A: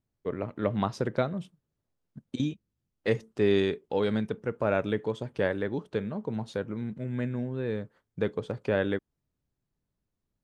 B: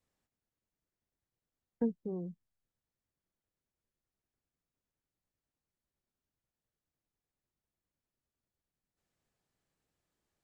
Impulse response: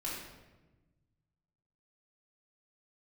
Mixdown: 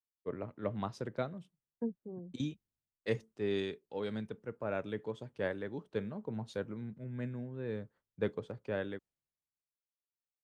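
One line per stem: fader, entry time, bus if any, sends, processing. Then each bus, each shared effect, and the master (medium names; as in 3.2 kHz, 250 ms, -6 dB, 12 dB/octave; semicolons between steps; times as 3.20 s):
-9.0 dB, 0.00 s, no send, none
-4.5 dB, 0.00 s, no send, none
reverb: none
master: gain riding within 3 dB 0.5 s; three bands expanded up and down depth 70%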